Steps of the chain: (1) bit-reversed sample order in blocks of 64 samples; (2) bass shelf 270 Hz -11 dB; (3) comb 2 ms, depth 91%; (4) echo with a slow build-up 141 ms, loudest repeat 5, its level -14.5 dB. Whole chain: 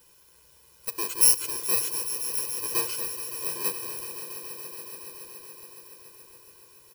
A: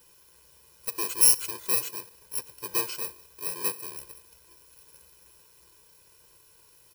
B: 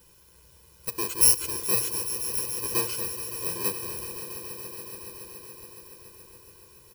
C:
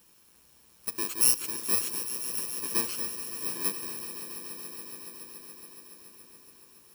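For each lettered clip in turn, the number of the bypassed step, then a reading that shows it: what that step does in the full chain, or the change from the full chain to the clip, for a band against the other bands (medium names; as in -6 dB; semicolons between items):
4, momentary loudness spread change -4 LU; 2, 125 Hz band +8.5 dB; 3, 250 Hz band +5.5 dB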